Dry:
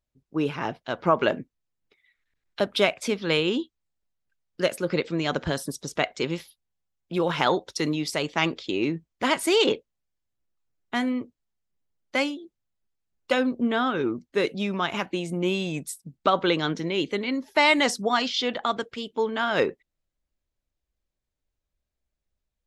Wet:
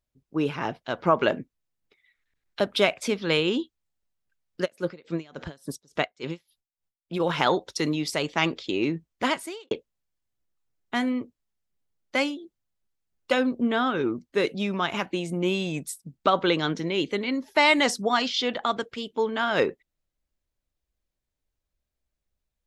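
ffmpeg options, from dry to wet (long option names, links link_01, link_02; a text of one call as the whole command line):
ffmpeg -i in.wav -filter_complex "[0:a]asplit=3[link_01][link_02][link_03];[link_01]afade=type=out:start_time=4.64:duration=0.02[link_04];[link_02]aeval=exprs='val(0)*pow(10,-27*(0.5-0.5*cos(2*PI*3.5*n/s))/20)':channel_layout=same,afade=type=in:start_time=4.64:duration=0.02,afade=type=out:start_time=7.19:duration=0.02[link_05];[link_03]afade=type=in:start_time=7.19:duration=0.02[link_06];[link_04][link_05][link_06]amix=inputs=3:normalize=0,asplit=2[link_07][link_08];[link_07]atrim=end=9.71,asetpts=PTS-STARTPTS,afade=type=out:start_time=9.25:duration=0.46:curve=qua[link_09];[link_08]atrim=start=9.71,asetpts=PTS-STARTPTS,afade=type=in:duration=0.004:curve=hsin[link_10];[link_09][link_10]concat=n=2:v=0:a=1" out.wav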